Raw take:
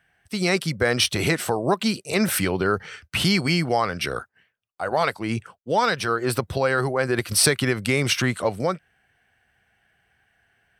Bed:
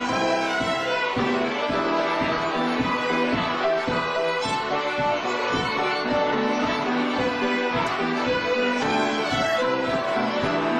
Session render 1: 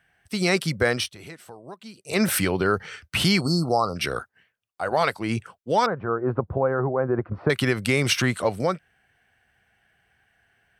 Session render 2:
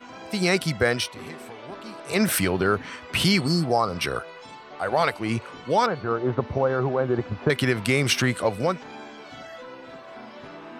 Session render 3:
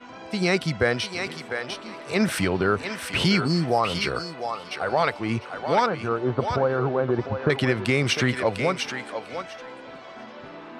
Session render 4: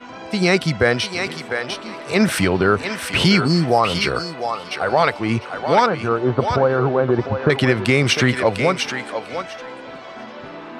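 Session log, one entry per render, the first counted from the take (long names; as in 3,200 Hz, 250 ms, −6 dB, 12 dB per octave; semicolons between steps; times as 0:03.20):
0:00.87–0:02.20: duck −19.5 dB, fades 0.24 s; 0:03.41–0:03.96: linear-phase brick-wall band-stop 1,400–3,800 Hz; 0:05.86–0:07.50: low-pass filter 1,200 Hz 24 dB per octave
mix in bed −18 dB
high-frequency loss of the air 62 metres; feedback echo with a high-pass in the loop 700 ms, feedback 16%, high-pass 670 Hz, level −5 dB
level +6 dB; brickwall limiter −3 dBFS, peak gain reduction 1 dB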